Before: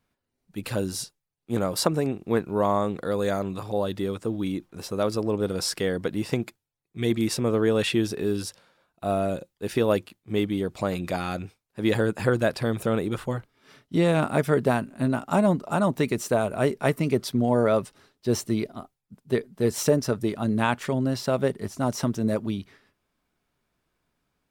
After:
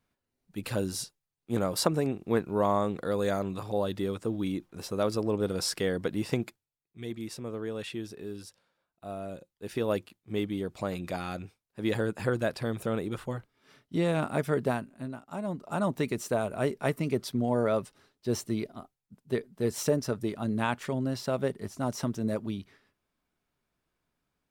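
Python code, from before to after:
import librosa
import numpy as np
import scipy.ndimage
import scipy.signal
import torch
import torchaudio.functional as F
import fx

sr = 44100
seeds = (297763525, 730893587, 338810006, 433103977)

y = fx.gain(x, sr, db=fx.line((6.45, -3.0), (7.05, -13.5), (9.17, -13.5), (9.96, -6.0), (14.7, -6.0), (15.26, -17.5), (15.82, -5.5)))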